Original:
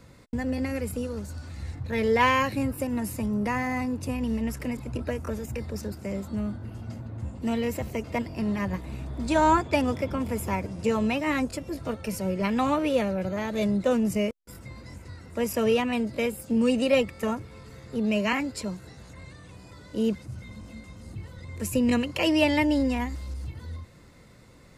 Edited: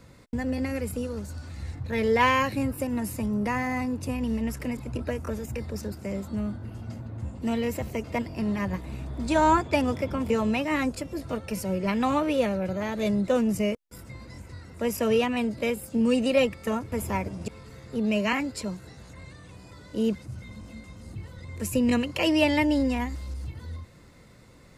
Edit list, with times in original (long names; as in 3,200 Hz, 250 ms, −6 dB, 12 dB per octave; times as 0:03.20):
0:10.30–0:10.86: move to 0:17.48